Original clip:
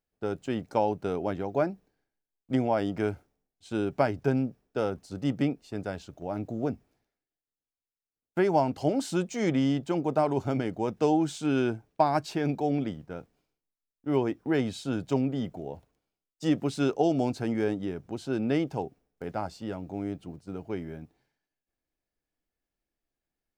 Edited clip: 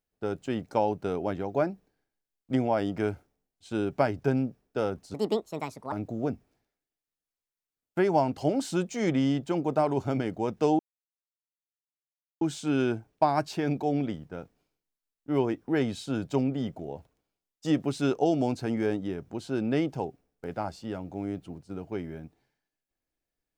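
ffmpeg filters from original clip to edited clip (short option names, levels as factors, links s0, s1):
-filter_complex "[0:a]asplit=4[s0][s1][s2][s3];[s0]atrim=end=5.144[s4];[s1]atrim=start=5.14:end=6.32,asetpts=PTS-STARTPTS,asetrate=66591,aresample=44100,atrim=end_sample=34462,asetpts=PTS-STARTPTS[s5];[s2]atrim=start=6.316:end=11.19,asetpts=PTS-STARTPTS,afade=t=out:st=4.87:d=0.004:c=hsin,apad=pad_dur=1.62[s6];[s3]atrim=start=11.19,asetpts=PTS-STARTPTS,afade=t=in:d=0.004:c=hsin[s7];[s4][s5]acrossfade=d=0.004:c1=hsin:c2=hsin[s8];[s6][s7]concat=n=2:v=0:a=1[s9];[s8][s9]acrossfade=d=0.004:c1=hsin:c2=hsin"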